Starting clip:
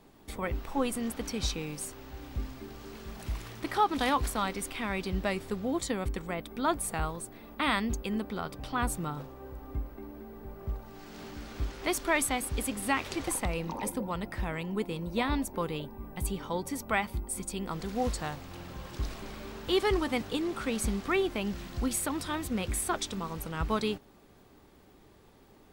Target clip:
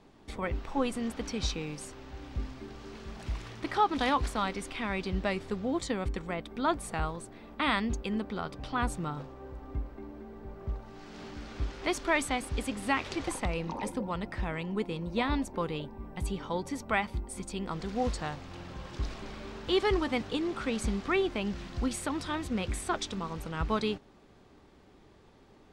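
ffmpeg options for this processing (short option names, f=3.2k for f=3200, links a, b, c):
-af "lowpass=6.4k"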